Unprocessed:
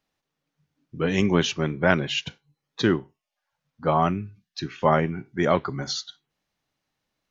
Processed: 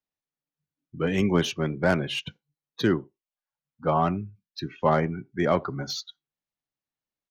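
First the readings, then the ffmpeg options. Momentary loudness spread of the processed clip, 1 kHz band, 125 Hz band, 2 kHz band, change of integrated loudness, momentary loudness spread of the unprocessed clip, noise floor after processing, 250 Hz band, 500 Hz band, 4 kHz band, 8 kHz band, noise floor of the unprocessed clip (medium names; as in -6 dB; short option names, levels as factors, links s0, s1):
12 LU, -2.5 dB, -1.5 dB, -4.0 dB, -2.0 dB, 14 LU, under -85 dBFS, -1.5 dB, -1.5 dB, -3.5 dB, no reading, -84 dBFS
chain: -filter_complex "[0:a]afftdn=nr=15:nf=-38,acrossover=split=260|1000[s0][s1][s2];[s1]aecho=1:1:79:0.0944[s3];[s2]asoftclip=type=tanh:threshold=0.0794[s4];[s0][s3][s4]amix=inputs=3:normalize=0,volume=0.841"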